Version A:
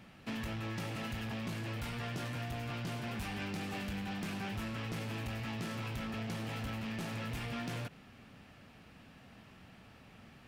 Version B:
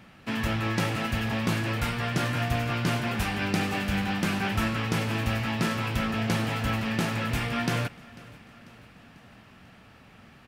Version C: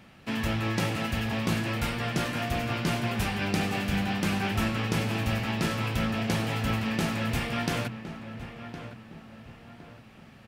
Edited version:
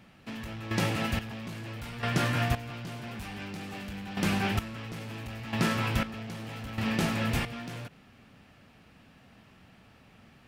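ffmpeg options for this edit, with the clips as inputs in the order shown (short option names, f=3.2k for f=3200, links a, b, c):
-filter_complex "[2:a]asplit=3[a][b][c];[1:a]asplit=2[d][e];[0:a]asplit=6[f][g][h][i][j][k];[f]atrim=end=0.712[l];[a]atrim=start=0.708:end=1.192[m];[g]atrim=start=1.188:end=2.032[n];[d]atrim=start=2.028:end=2.552[o];[h]atrim=start=2.548:end=4.172[p];[b]atrim=start=4.168:end=4.592[q];[i]atrim=start=4.588:end=5.532[r];[e]atrim=start=5.528:end=6.032[s];[j]atrim=start=6.028:end=6.782[t];[c]atrim=start=6.778:end=7.452[u];[k]atrim=start=7.448[v];[l][m]acrossfade=d=0.004:c1=hsin:c2=hsin[w];[w][n]acrossfade=d=0.004:c1=hsin:c2=hsin[x];[x][o]acrossfade=d=0.004:c1=hsin:c2=hsin[y];[y][p]acrossfade=d=0.004:c1=hsin:c2=hsin[z];[z][q]acrossfade=d=0.004:c1=hsin:c2=hsin[aa];[aa][r]acrossfade=d=0.004:c1=hsin:c2=hsin[ab];[ab][s]acrossfade=d=0.004:c1=hsin:c2=hsin[ac];[ac][t]acrossfade=d=0.004:c1=hsin:c2=hsin[ad];[ad][u]acrossfade=d=0.004:c1=hsin:c2=hsin[ae];[ae][v]acrossfade=d=0.004:c1=hsin:c2=hsin"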